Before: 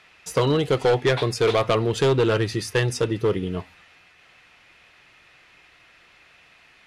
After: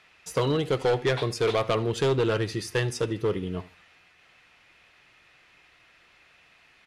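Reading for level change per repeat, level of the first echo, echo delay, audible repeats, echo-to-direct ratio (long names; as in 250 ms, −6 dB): −11.5 dB, −19.5 dB, 77 ms, 2, −19.0 dB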